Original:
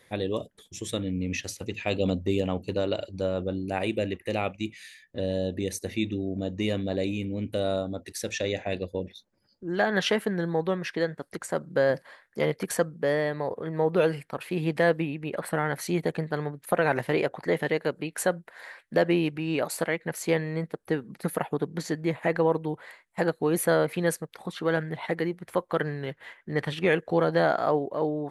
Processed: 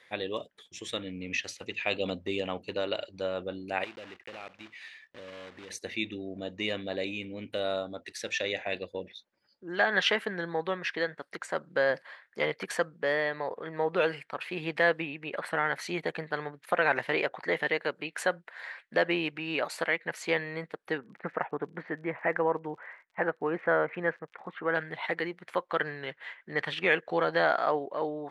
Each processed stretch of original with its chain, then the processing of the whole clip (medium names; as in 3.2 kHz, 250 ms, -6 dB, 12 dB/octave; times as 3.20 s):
3.84–5.70 s: block-companded coder 3-bit + treble shelf 5.3 kHz -11.5 dB + compression 2.5:1, threshold -42 dBFS
20.97–24.74 s: low-pass 2.1 kHz 24 dB/octave + crackle 46 per s -49 dBFS
whole clip: low-pass 2.5 kHz 12 dB/octave; tilt EQ +4.5 dB/octave